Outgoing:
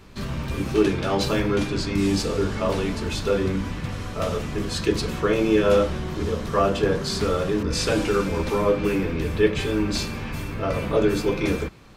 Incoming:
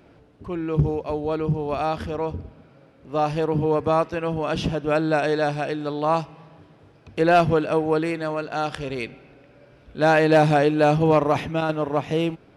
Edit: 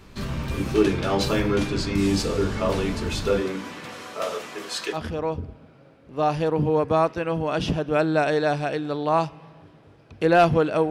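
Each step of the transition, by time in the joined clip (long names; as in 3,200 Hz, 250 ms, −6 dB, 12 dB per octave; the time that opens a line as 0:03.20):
outgoing
0:03.40–0:04.98: high-pass filter 270 Hz → 670 Hz
0:04.95: continue with incoming from 0:01.91, crossfade 0.06 s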